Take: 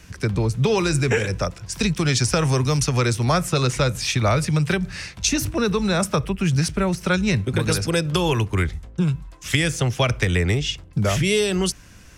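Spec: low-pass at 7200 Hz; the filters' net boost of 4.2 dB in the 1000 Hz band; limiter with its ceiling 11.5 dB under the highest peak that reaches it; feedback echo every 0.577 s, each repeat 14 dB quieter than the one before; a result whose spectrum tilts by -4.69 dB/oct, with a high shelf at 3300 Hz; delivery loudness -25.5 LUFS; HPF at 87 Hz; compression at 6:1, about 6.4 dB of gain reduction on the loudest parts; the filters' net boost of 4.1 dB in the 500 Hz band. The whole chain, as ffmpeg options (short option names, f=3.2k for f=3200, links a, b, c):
-af "highpass=87,lowpass=7.2k,equalizer=f=500:t=o:g=4,equalizer=f=1k:t=o:g=4,highshelf=f=3.3k:g=4,acompressor=threshold=-19dB:ratio=6,alimiter=limit=-17.5dB:level=0:latency=1,aecho=1:1:577|1154:0.2|0.0399,volume=1.5dB"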